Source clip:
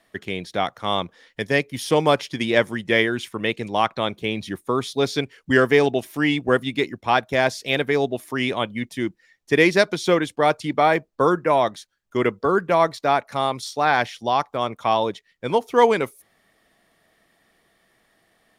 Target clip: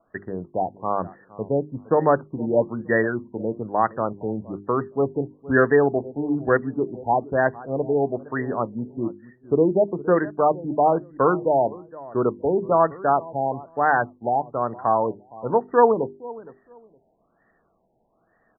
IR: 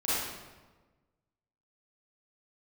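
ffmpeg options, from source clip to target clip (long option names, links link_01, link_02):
-filter_complex "[0:a]bandreject=frequency=50:width_type=h:width=6,bandreject=frequency=100:width_type=h:width=6,bandreject=frequency=150:width_type=h:width=6,bandreject=frequency=200:width_type=h:width=6,bandreject=frequency=250:width_type=h:width=6,bandreject=frequency=300:width_type=h:width=6,bandreject=frequency=350:width_type=h:width=6,bandreject=frequency=400:width_type=h:width=6,asplit=2[link_01][link_02];[link_02]adelay=465,lowpass=frequency=920:poles=1,volume=-18dB,asplit=2[link_03][link_04];[link_04]adelay=465,lowpass=frequency=920:poles=1,volume=0.24[link_05];[link_01][link_03][link_05]amix=inputs=3:normalize=0,afftfilt=real='re*lt(b*sr/1024,920*pow(2000/920,0.5+0.5*sin(2*PI*1.1*pts/sr)))':imag='im*lt(b*sr/1024,920*pow(2000/920,0.5+0.5*sin(2*PI*1.1*pts/sr)))':win_size=1024:overlap=0.75"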